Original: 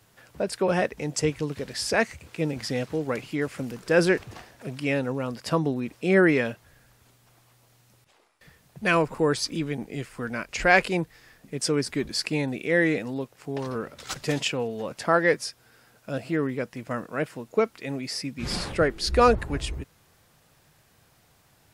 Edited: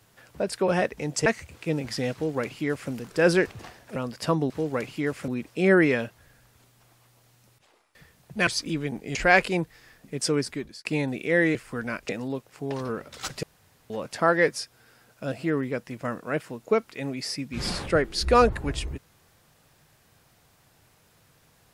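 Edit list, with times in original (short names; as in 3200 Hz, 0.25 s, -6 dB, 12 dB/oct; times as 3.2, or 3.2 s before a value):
1.26–1.98 cut
2.85–3.63 copy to 5.74
4.68–5.2 cut
8.93–9.33 cut
10.01–10.55 move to 12.95
11.77–12.25 fade out
14.29–14.76 room tone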